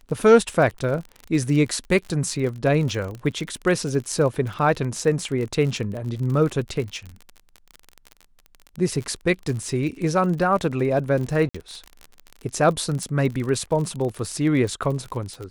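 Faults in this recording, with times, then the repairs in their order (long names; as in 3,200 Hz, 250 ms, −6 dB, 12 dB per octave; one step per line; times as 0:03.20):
surface crackle 40 per second −28 dBFS
0:11.49–0:11.54: drop-out 55 ms
0:13.03: click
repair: click removal
repair the gap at 0:11.49, 55 ms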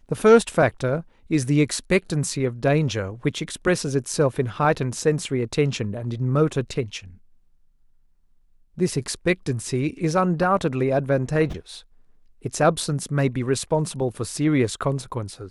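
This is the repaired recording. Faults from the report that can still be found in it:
none of them is left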